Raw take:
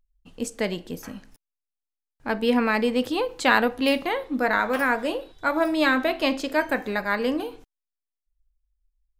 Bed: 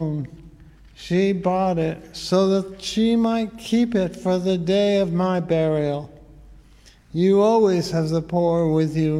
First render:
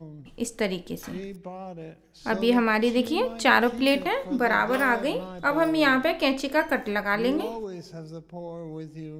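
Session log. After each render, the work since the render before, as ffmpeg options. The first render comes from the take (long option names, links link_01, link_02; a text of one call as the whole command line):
ffmpeg -i in.wav -i bed.wav -filter_complex "[1:a]volume=-18dB[link_01];[0:a][link_01]amix=inputs=2:normalize=0" out.wav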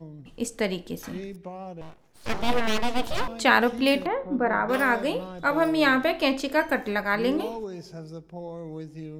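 ffmpeg -i in.wav -filter_complex "[0:a]asettb=1/sr,asplit=3[link_01][link_02][link_03];[link_01]atrim=end=1.814[link_04];[link_02]atrim=start=1.81:end=3.28,asetpts=PTS-STARTPTS,afade=type=in:duration=0.004:curve=qsin,afade=type=out:start_time=1.466:duration=0.004:curve=qsin,aeval=exprs='abs(val(0))':channel_layout=same[link_05];[link_03]atrim=start=3.276[link_06];[link_04][link_05]acrossfade=duration=0.004:curve1=hsin:curve2=qsin[link_07];[link_07][link_06]acrossfade=duration=0.004:curve1=qsin:curve2=hsin,asettb=1/sr,asplit=3[link_08][link_09][link_10];[link_08]atrim=end=4.064[link_11];[link_09]atrim=start=4.06:end=4.69,asetpts=PTS-STARTPTS,afade=type=in:duration=0.004:curve=qsin,afade=type=out:start_time=0.626:duration=0.004:curve=qsin,lowpass=1400[link_12];[link_10]atrim=start=4.686[link_13];[link_11][link_12]acrossfade=duration=0.004:curve1=hsin:curve2=qsin[link_14];[link_14][link_13]acrossfade=duration=0.004:curve1=qsin:curve2=hsin" out.wav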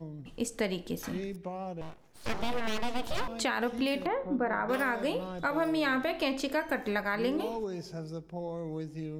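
ffmpeg -i in.wav -af "alimiter=limit=-14dB:level=0:latency=1:release=108,acompressor=threshold=-30dB:ratio=2" out.wav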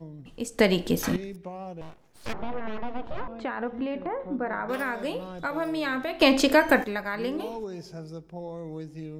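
ffmpeg -i in.wav -filter_complex "[0:a]asettb=1/sr,asplit=3[link_01][link_02][link_03];[link_01]atrim=end=2.334[link_04];[link_02]atrim=start=2.33:end=4.2,asetpts=PTS-STARTPTS,afade=type=in:duration=0.004:curve=qsin,afade=type=out:start_time=1.866:duration=0.004:curve=qsin,lowpass=1600[link_05];[link_03]atrim=start=4.196[link_06];[link_04][link_05]acrossfade=duration=0.004:curve1=hsin:curve2=qsin[link_07];[link_07][link_06]acrossfade=duration=0.004:curve1=qsin:curve2=hsin,asplit=5[link_08][link_09][link_10][link_11][link_12];[link_08]atrim=end=0.592[link_13];[link_09]atrim=start=0.588:end=1.162,asetpts=PTS-STARTPTS,volume=10.5dB[link_14];[link_10]atrim=start=1.158:end=6.212[link_15];[link_11]atrim=start=6.208:end=6.842,asetpts=PTS-STARTPTS,volume=11.5dB[link_16];[link_12]atrim=start=6.838[link_17];[link_13][link_14]acrossfade=duration=0.004:curve1=hsin:curve2=hsin[link_18];[link_18][link_15]acrossfade=duration=0.004:curve1=hsin:curve2=hsin[link_19];[link_19][link_16]acrossfade=duration=0.004:curve1=hsin:curve2=hsin[link_20];[link_20][link_17]acrossfade=duration=0.004:curve1=hsin:curve2=hsin" out.wav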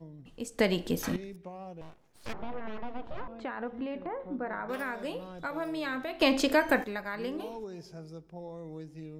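ffmpeg -i in.wav -af "volume=-5.5dB" out.wav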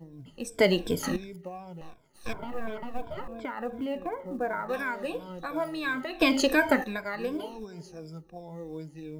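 ffmpeg -i in.wav -af "afftfilt=real='re*pow(10,16/40*sin(2*PI*(1.7*log(max(b,1)*sr/1024/100)/log(2)-(-2.8)*(pts-256)/sr)))':imag='im*pow(10,16/40*sin(2*PI*(1.7*log(max(b,1)*sr/1024/100)/log(2)-(-2.8)*(pts-256)/sr)))':win_size=1024:overlap=0.75,acrusher=bits=9:mode=log:mix=0:aa=0.000001" out.wav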